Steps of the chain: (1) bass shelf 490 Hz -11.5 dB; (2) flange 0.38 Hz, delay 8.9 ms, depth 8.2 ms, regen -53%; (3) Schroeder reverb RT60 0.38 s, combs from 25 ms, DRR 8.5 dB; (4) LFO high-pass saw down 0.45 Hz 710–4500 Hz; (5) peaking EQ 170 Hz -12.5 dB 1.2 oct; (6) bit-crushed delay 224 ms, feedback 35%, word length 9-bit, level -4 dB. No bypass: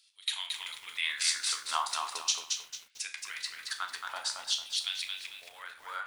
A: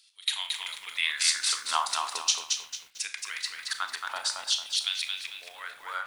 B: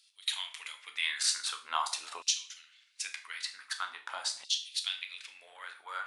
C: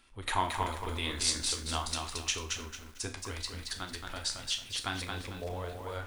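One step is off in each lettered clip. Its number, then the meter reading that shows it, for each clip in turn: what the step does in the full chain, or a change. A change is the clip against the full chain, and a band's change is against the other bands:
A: 2, loudness change +4.0 LU; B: 6, momentary loudness spread change +5 LU; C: 4, 500 Hz band +15.0 dB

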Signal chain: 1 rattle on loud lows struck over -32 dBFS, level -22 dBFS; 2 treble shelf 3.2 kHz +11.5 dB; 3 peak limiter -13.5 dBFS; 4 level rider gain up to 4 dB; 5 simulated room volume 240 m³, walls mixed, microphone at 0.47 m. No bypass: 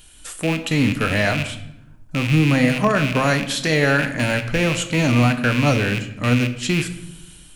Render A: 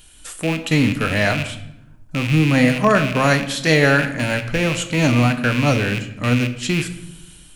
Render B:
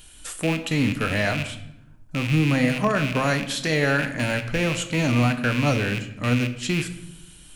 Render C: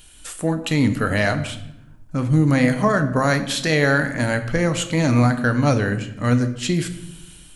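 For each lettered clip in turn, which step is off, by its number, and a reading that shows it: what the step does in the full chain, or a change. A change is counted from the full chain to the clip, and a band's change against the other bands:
3, crest factor change +2.0 dB; 4, momentary loudness spread change -1 LU; 1, 4 kHz band -3.0 dB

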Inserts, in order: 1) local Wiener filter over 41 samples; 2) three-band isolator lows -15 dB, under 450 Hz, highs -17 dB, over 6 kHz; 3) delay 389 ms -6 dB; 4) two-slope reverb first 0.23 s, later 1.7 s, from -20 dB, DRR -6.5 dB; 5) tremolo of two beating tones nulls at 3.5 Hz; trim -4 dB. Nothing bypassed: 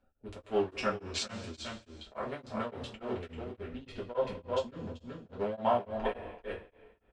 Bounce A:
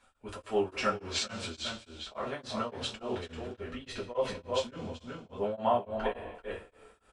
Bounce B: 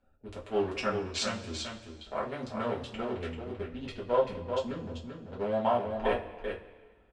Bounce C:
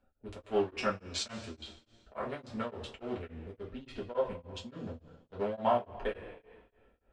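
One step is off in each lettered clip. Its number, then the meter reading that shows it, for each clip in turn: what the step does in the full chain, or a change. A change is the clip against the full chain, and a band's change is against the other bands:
1, 4 kHz band +4.0 dB; 5, momentary loudness spread change -2 LU; 3, momentary loudness spread change +4 LU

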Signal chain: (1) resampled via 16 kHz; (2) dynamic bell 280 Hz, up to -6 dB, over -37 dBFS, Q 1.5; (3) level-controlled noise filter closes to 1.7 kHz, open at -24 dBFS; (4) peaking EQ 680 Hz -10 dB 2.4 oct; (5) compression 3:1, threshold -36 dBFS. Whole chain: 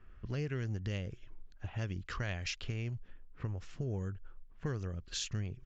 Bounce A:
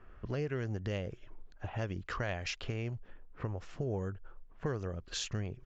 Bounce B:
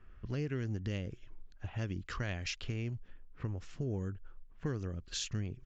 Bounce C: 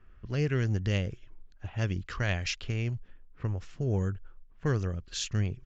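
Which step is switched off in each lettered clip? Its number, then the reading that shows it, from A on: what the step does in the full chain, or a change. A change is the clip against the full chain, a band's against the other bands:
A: 4, 500 Hz band +4.0 dB; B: 2, 250 Hz band +2.5 dB; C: 5, mean gain reduction 4.5 dB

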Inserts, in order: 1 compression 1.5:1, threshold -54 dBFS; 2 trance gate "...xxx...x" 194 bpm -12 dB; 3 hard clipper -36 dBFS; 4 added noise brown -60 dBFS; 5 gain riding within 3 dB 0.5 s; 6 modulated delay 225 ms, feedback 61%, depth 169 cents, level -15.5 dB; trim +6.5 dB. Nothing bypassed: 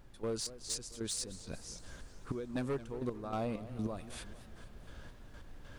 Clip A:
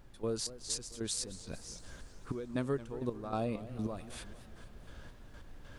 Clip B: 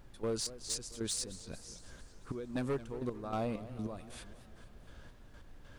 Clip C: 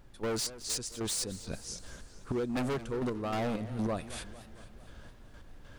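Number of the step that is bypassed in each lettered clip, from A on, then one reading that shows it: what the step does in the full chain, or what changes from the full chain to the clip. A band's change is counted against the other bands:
3, distortion -12 dB; 5, crest factor change -1.5 dB; 1, mean gain reduction 7.0 dB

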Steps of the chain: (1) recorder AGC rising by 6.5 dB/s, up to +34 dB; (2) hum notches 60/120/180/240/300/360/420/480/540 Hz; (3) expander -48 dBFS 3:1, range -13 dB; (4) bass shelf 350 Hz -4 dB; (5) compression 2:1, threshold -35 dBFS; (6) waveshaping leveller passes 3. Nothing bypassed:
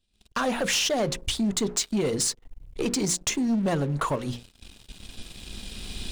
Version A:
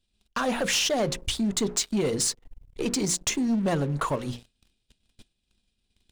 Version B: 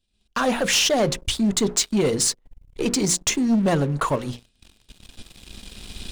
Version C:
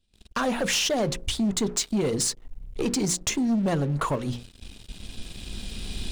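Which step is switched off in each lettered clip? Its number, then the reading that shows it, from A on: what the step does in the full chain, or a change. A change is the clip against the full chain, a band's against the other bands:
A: 1, momentary loudness spread change -8 LU; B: 5, loudness change +5.0 LU; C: 4, 125 Hz band +2.0 dB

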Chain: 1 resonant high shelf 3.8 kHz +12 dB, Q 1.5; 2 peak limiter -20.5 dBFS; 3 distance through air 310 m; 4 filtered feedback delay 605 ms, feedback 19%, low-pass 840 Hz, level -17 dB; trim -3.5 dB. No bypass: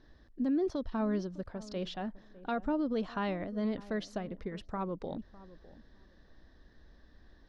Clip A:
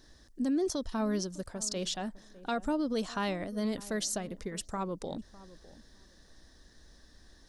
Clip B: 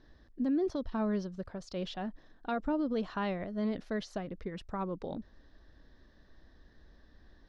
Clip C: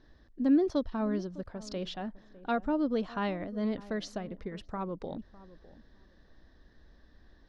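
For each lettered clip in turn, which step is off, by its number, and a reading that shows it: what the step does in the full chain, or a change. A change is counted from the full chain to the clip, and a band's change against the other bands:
3, 4 kHz band +8.0 dB; 4, echo-to-direct -22.0 dB to none; 2, crest factor change +4.0 dB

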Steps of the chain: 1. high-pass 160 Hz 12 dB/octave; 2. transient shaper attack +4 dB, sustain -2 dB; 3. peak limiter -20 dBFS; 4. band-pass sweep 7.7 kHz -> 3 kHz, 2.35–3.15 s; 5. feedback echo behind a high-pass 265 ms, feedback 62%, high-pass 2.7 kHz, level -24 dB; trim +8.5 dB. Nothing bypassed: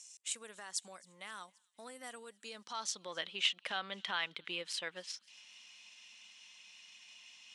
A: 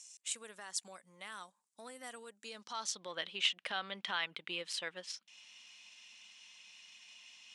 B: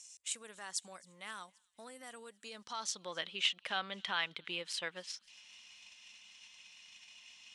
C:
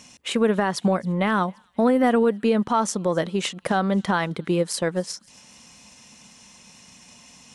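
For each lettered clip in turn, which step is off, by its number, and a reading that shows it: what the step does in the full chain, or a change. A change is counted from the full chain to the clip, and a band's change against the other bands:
5, echo-to-direct -29.5 dB to none; 1, 125 Hz band +2.0 dB; 4, 4 kHz band -19.5 dB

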